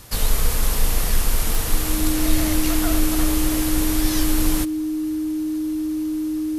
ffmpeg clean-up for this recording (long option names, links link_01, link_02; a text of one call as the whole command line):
ffmpeg -i in.wav -af "adeclick=threshold=4,bandreject=frequency=310:width=30" out.wav